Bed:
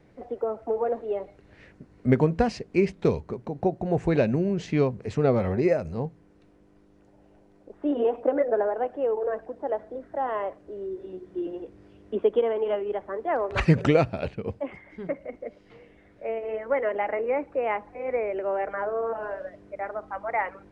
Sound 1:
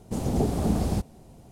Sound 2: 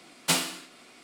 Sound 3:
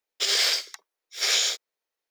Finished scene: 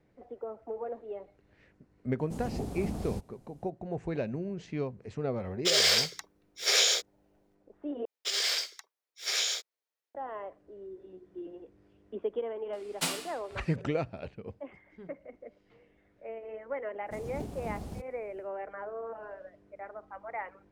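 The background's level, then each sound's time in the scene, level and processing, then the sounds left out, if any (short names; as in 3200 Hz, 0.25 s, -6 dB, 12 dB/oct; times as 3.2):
bed -11 dB
2.19 add 1 -11 dB
5.45 add 3 -1.5 dB + bell 470 Hz +7.5 dB 0.98 oct
8.05 replace with 3 -7 dB + HPF 240 Hz
12.73 add 2 -7 dB
17 add 1 -15 dB, fades 0.10 s + switching dead time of 0.14 ms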